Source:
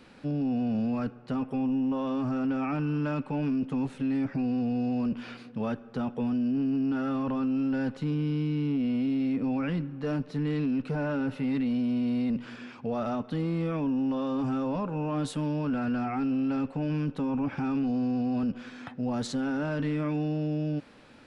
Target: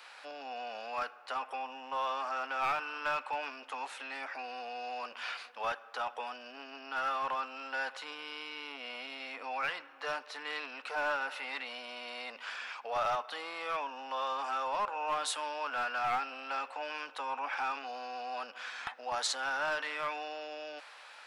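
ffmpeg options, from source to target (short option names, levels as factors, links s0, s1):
-filter_complex "[0:a]highpass=f=760:w=0.5412,highpass=f=760:w=1.3066,acrossover=split=2600[s0][s1];[s0]aeval=exprs='clip(val(0),-1,0.0158)':c=same[s2];[s2][s1]amix=inputs=2:normalize=0,volume=2.11"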